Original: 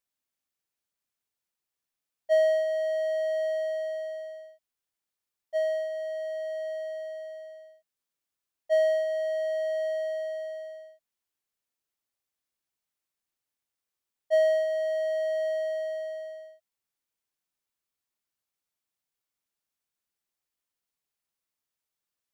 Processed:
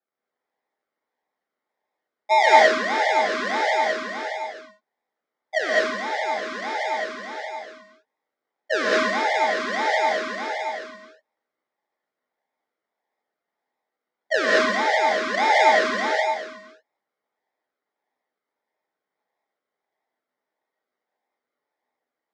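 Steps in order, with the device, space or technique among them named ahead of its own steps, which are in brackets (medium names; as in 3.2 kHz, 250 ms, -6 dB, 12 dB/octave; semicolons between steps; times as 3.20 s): 15.34–16.12 s: comb 1.7 ms, depth 74%; circuit-bent sampling toy (decimation with a swept rate 41×, swing 60% 1.6 Hz; cabinet simulation 580–5300 Hz, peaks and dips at 870 Hz +6 dB, 1.9 kHz +7 dB, 2.7 kHz -8 dB, 4.2 kHz -3 dB); gated-style reverb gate 240 ms rising, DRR -4.5 dB; trim +2.5 dB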